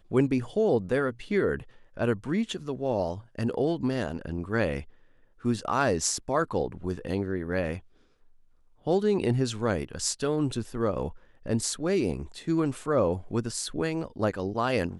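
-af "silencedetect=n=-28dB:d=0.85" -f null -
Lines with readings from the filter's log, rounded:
silence_start: 7.76
silence_end: 8.87 | silence_duration: 1.10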